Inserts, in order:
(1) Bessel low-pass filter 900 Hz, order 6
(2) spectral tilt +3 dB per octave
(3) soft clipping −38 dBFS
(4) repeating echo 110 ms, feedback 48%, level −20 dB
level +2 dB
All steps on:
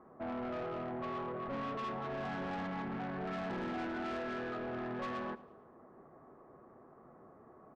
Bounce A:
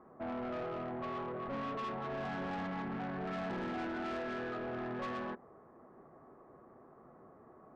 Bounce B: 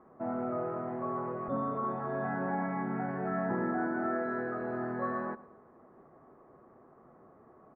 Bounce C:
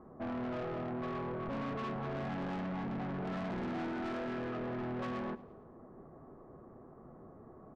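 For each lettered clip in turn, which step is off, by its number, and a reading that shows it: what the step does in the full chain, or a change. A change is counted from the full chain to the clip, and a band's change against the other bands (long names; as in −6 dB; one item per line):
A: 4, echo-to-direct ratio −19.0 dB to none audible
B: 3, distortion level −9 dB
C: 2, 125 Hz band +6.0 dB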